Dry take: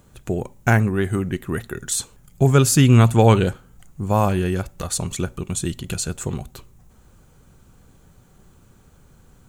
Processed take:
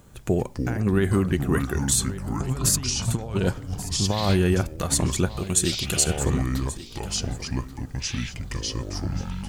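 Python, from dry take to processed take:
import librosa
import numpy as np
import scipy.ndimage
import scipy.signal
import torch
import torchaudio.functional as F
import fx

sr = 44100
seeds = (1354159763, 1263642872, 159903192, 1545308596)

p1 = fx.over_compress(x, sr, threshold_db=-20.0, ratio=-0.5)
p2 = fx.echo_pitch(p1, sr, ms=170, semitones=-6, count=3, db_per_echo=-6.0)
p3 = fx.bass_treble(p2, sr, bass_db=-5, treble_db=5, at=(5.38, 6.04))
p4 = p3 + fx.echo_single(p3, sr, ms=1133, db=-16.0, dry=0)
y = F.gain(torch.from_numpy(p4), -2.0).numpy()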